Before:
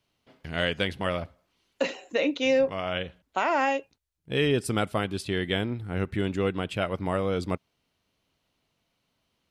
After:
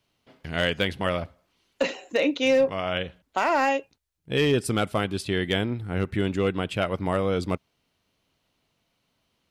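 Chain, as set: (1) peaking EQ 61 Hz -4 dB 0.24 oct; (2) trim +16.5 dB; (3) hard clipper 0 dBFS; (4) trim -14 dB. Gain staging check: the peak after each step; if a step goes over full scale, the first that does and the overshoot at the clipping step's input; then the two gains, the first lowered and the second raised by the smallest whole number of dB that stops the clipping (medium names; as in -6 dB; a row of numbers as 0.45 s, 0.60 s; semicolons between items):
-12.0 dBFS, +4.5 dBFS, 0.0 dBFS, -14.0 dBFS; step 2, 4.5 dB; step 2 +11.5 dB, step 4 -9 dB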